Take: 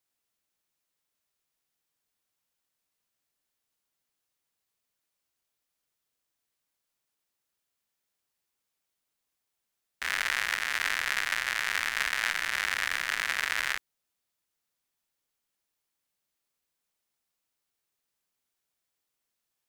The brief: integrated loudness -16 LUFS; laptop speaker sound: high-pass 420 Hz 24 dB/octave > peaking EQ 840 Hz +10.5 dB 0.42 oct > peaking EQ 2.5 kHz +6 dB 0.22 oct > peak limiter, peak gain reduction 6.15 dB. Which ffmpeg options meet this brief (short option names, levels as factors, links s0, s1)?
-af "highpass=f=420:w=0.5412,highpass=f=420:w=1.3066,equalizer=f=840:t=o:w=0.42:g=10.5,equalizer=f=2500:t=o:w=0.22:g=6,volume=5.31,alimiter=limit=0.794:level=0:latency=1"